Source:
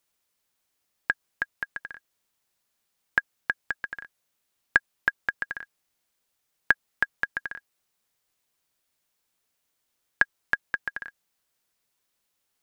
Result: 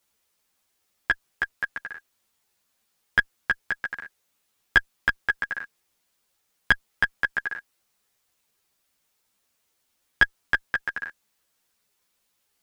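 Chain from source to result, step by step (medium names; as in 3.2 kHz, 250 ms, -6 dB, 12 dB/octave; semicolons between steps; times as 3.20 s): single-diode clipper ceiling -12 dBFS; three-phase chorus; trim +7.5 dB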